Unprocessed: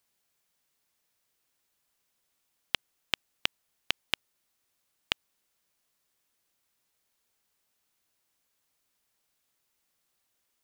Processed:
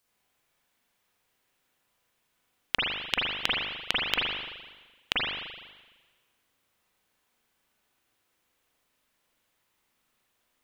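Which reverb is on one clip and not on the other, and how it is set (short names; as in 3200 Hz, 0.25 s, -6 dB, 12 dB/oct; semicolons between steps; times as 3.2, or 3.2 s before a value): spring tank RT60 1.3 s, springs 38/42 ms, chirp 55 ms, DRR -6.5 dB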